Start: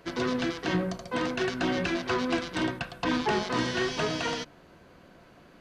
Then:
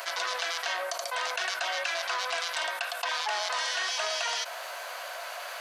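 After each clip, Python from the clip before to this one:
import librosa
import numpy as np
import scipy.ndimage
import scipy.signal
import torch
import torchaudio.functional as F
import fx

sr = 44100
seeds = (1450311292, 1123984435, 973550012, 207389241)

y = scipy.signal.sosfilt(scipy.signal.ellip(4, 1.0, 70, 620.0, 'highpass', fs=sr, output='sos'), x)
y = fx.high_shelf(y, sr, hz=5400.0, db=12.0)
y = fx.env_flatten(y, sr, amount_pct=70)
y = y * 10.0 ** (-3.0 / 20.0)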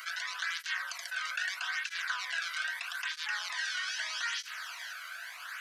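y = fx.ladder_highpass(x, sr, hz=1300.0, resonance_pct=45)
y = y + 10.0 ** (-9.5 / 20.0) * np.pad(y, (int(485 * sr / 1000.0), 0))[:len(y)]
y = fx.flanger_cancel(y, sr, hz=0.79, depth_ms=1.2)
y = y * 10.0 ** (4.5 / 20.0)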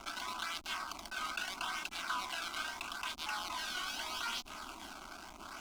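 y = fx.bass_treble(x, sr, bass_db=-13, treble_db=-11)
y = fx.backlash(y, sr, play_db=-38.5)
y = fx.fixed_phaser(y, sr, hz=480.0, stages=6)
y = y * 10.0 ** (7.0 / 20.0)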